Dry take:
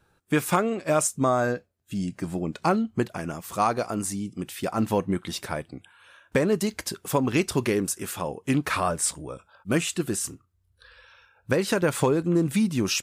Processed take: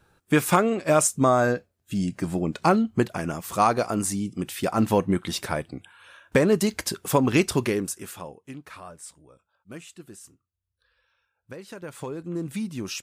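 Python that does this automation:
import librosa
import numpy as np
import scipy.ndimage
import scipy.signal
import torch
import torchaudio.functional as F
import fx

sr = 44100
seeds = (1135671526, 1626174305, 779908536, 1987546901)

y = fx.gain(x, sr, db=fx.line((7.44, 3.0), (8.23, -7.5), (8.55, -17.0), (11.69, -17.0), (12.44, -7.5)))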